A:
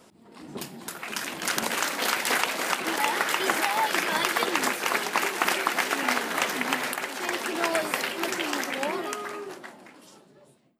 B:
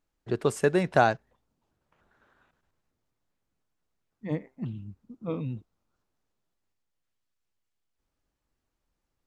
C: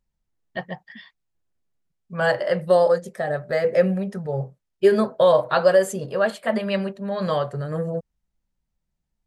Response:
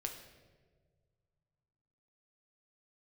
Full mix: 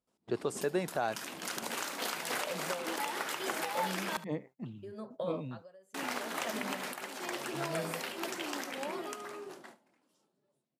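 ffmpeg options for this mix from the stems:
-filter_complex "[0:a]volume=-8dB,asplit=3[link_01][link_02][link_03];[link_01]atrim=end=4.17,asetpts=PTS-STARTPTS,afade=type=out:start_time=4.166:duration=0.004:curve=hsin[link_04];[link_02]atrim=start=4.17:end=5.94,asetpts=PTS-STARTPTS,volume=0[link_05];[link_03]atrim=start=5.94,asetpts=PTS-STARTPTS,afade=type=in:duration=0.004:curve=hsin[link_06];[link_04][link_05][link_06]concat=n=3:v=0:a=1,asplit=2[link_07][link_08];[link_08]volume=-15.5dB[link_09];[1:a]highpass=frequency=310:poles=1,volume=-2dB[link_10];[2:a]acompressor=threshold=-23dB:ratio=4,aeval=exprs='val(0)*pow(10,-20*(0.5-0.5*cos(2*PI*0.77*n/s))/20)':channel_layout=same,volume=-12.5dB[link_11];[link_07][link_10]amix=inputs=2:normalize=0,agate=range=-30dB:threshold=-52dB:ratio=16:detection=peak,alimiter=limit=-20.5dB:level=0:latency=1:release=146,volume=0dB[link_12];[link_09]aecho=0:1:73:1[link_13];[link_11][link_12][link_13]amix=inputs=3:normalize=0,highpass=69,equalizer=frequency=1900:width_type=o:width=0.98:gain=-3.5"

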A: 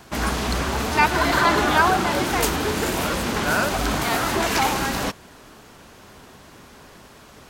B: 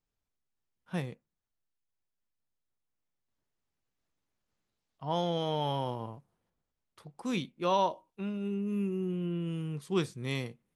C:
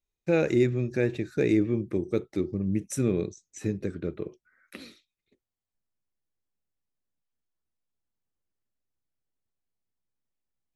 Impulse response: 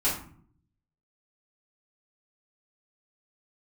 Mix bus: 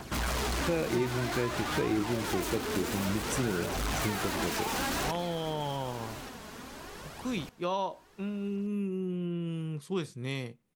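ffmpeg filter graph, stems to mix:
-filter_complex "[0:a]aphaser=in_gain=1:out_gain=1:delay=4.8:decay=0.47:speed=0.54:type=triangular,alimiter=limit=-12dB:level=0:latency=1,asoftclip=type=hard:threshold=-28.5dB,volume=0dB,asplit=2[link_01][link_02];[link_02]volume=-16dB[link_03];[1:a]volume=1dB[link_04];[2:a]adelay=400,volume=1.5dB[link_05];[link_03]aecho=0:1:1178:1[link_06];[link_01][link_04][link_05][link_06]amix=inputs=4:normalize=0,acompressor=threshold=-30dB:ratio=2.5"

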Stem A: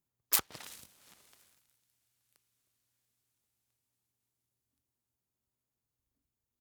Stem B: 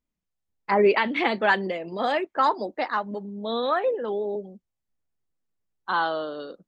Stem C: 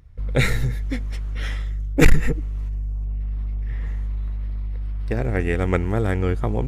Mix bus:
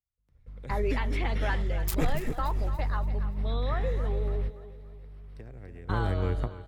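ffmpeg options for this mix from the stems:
ffmpeg -i stem1.wav -i stem2.wav -i stem3.wav -filter_complex "[0:a]adelay=1550,volume=-8dB,asplit=2[link_01][link_02];[link_02]volume=-13.5dB[link_03];[1:a]agate=range=-33dB:threshold=-31dB:ratio=3:detection=peak,acompressor=threshold=-26dB:ratio=1.5,volume=-9dB,asplit=3[link_04][link_05][link_06];[link_05]volume=-12dB[link_07];[2:a]acrossover=split=99|730[link_08][link_09][link_10];[link_08]acompressor=threshold=-29dB:ratio=4[link_11];[link_09]acompressor=threshold=-35dB:ratio=4[link_12];[link_10]acompressor=threshold=-47dB:ratio=4[link_13];[link_11][link_12][link_13]amix=inputs=3:normalize=0,volume=2dB,asplit=2[link_14][link_15];[link_15]volume=-15.5dB[link_16];[link_06]apad=whole_len=294496[link_17];[link_14][link_17]sidechaingate=range=-50dB:threshold=-48dB:ratio=16:detection=peak[link_18];[link_03][link_07][link_16]amix=inputs=3:normalize=0,aecho=0:1:287|574|861|1148|1435|1722:1|0.41|0.168|0.0689|0.0283|0.0116[link_19];[link_01][link_04][link_18][link_19]amix=inputs=4:normalize=0" out.wav

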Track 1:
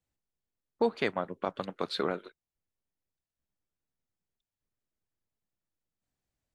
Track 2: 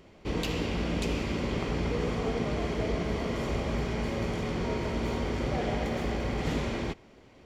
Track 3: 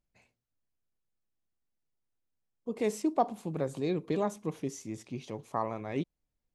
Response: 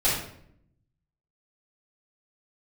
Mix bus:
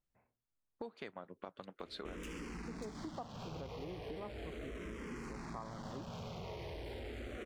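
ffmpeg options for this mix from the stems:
-filter_complex "[0:a]volume=-9dB[link_01];[1:a]asoftclip=type=hard:threshold=-34dB,asplit=2[link_02][link_03];[link_03]afreqshift=-0.37[link_04];[link_02][link_04]amix=inputs=2:normalize=1,adelay=1800,volume=0.5dB[link_05];[2:a]lowpass=frequency=1600:width=0.5412,lowpass=frequency=1600:width=1.3066,equalizer=frequency=1200:width=1.7:gain=5,volume=-6.5dB[link_06];[link_01][link_05][link_06]amix=inputs=3:normalize=0,acompressor=threshold=-43dB:ratio=5"

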